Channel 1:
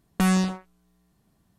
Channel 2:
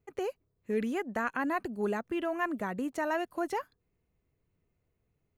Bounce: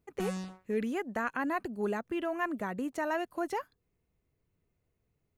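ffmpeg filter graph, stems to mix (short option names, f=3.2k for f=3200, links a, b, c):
-filter_complex "[0:a]volume=-16dB[a];[1:a]volume=-1dB[b];[a][b]amix=inputs=2:normalize=0"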